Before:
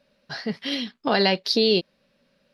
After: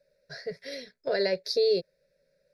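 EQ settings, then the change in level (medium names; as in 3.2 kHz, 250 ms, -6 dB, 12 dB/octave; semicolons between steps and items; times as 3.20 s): treble shelf 6.5 kHz -5.5 dB; static phaser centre 310 Hz, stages 6; static phaser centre 820 Hz, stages 6; 0.0 dB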